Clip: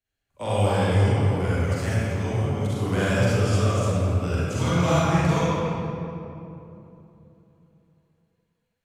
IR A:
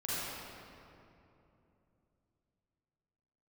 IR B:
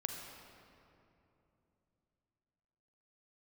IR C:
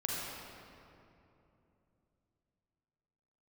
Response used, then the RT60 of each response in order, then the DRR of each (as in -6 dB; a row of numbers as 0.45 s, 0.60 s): A; 2.9 s, 3.0 s, 2.9 s; -10.5 dB, 2.5 dB, -4.5 dB